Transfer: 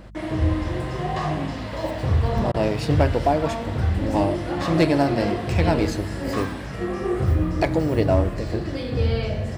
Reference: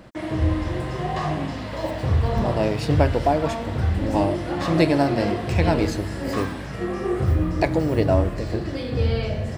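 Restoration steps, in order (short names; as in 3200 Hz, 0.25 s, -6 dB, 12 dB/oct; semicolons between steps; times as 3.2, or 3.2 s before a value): clip repair -9.5 dBFS; de-hum 51.1 Hz, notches 4; interpolate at 2.52, 21 ms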